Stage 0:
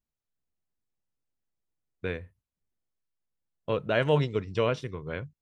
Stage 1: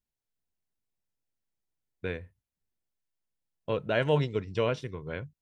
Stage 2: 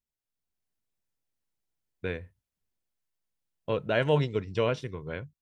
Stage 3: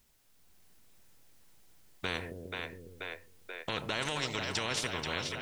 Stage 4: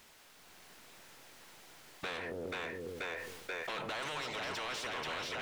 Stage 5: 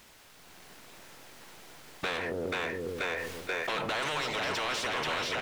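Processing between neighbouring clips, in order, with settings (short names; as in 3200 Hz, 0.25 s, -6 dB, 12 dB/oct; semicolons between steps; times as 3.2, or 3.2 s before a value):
notch 1200 Hz, Q 9.4; gain -1.5 dB
AGC gain up to 5.5 dB; gain -4.5 dB
limiter -22.5 dBFS, peak gain reduction 10 dB; split-band echo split 480 Hz, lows 0.137 s, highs 0.483 s, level -12 dB; spectral compressor 4:1; gain +3.5 dB
compressor 4:1, threshold -45 dBFS, peak gain reduction 13.5 dB; overdrive pedal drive 24 dB, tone 2500 Hz, clips at -29 dBFS; sustainer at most 40 dB/s
in parallel at -5 dB: backlash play -47.5 dBFS; on the sum: echo 0.947 s -13.5 dB; gain +3.5 dB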